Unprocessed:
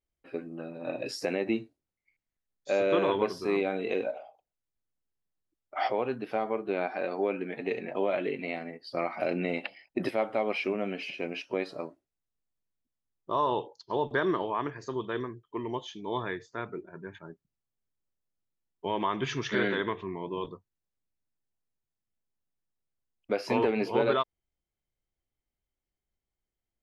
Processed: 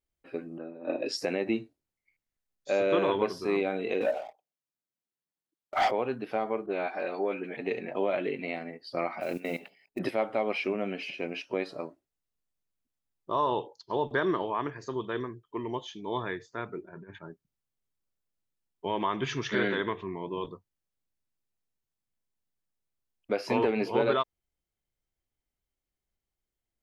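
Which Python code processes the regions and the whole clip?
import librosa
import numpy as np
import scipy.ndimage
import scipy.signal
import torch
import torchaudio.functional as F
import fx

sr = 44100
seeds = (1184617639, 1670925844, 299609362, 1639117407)

y = fx.chain(x, sr, fx.bandpass_edges(low_hz=240.0, high_hz=5700.0),
    fx.peak_eq(hz=330.0, db=6.5, octaves=1.3),
    fx.band_widen(depth_pct=100), at=(0.58, 1.17))
y = fx.chain(y, sr, fx.highpass(hz=140.0, slope=24),
    fx.leveller(passes=2), at=(4.01, 5.91))
y = fx.chain(y, sr, fx.low_shelf(hz=190.0, db=-7.5),
    fx.dispersion(late='highs', ms=41.0, hz=2000.0), at=(6.66, 7.57))
y = fx.chain(y, sr, fx.hum_notches(base_hz=60, count=7),
    fx.level_steps(step_db=16),
    fx.mod_noise(seeds[0], snr_db=25), at=(9.2, 9.99))
y = fx.chain(y, sr, fx.lowpass(hz=5300.0, slope=12),
    fx.over_compress(threshold_db=-44.0, ratio=-0.5), at=(16.89, 17.29))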